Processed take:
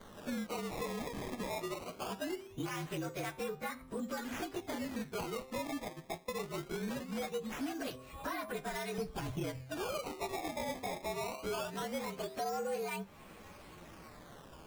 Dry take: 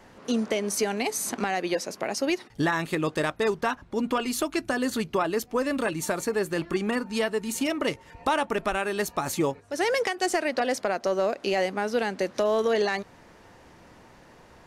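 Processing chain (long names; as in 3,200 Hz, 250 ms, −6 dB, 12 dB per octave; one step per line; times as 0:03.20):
partials spread apart or drawn together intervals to 115%
0:01.86–0:02.81: Bessel low-pass filter 1,900 Hz
0:05.67–0:06.33: noise gate −29 dBFS, range −29 dB
0:08.98–0:09.64: spectral tilt −4 dB per octave
hum removal 129.4 Hz, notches 10
downward compressor 3 to 1, threshold −42 dBFS, peak gain reduction 17.5 dB
sample-and-hold swept by an LFO 17×, swing 160% 0.21 Hz
flanger 0.15 Hz, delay 4.3 ms, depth 9.4 ms, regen +82%
soft clipping −37 dBFS, distortion −20 dB
level +7.5 dB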